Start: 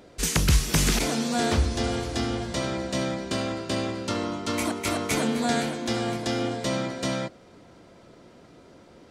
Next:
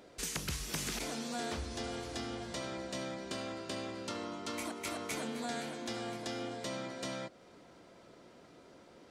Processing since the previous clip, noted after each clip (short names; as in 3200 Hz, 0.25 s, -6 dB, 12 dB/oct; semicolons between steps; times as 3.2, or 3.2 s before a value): low shelf 210 Hz -7.5 dB; notches 50/100 Hz; compressor 2:1, threshold -37 dBFS, peak gain reduction 9.5 dB; gain -4.5 dB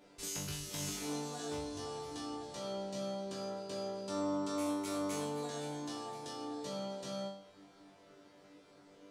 dynamic EQ 1900 Hz, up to -6 dB, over -58 dBFS, Q 1.1; resonator bank G2 fifth, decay 0.53 s; gain +12 dB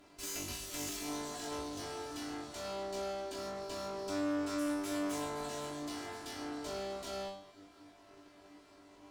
minimum comb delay 3 ms; one-sided clip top -41.5 dBFS; gain +2.5 dB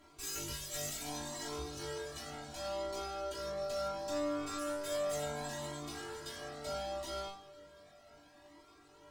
metallic resonator 69 Hz, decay 0.21 s, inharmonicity 0.03; on a send at -17.5 dB: reverb RT60 2.3 s, pre-delay 5 ms; on the sum: cascading flanger rising 0.7 Hz; gain +11 dB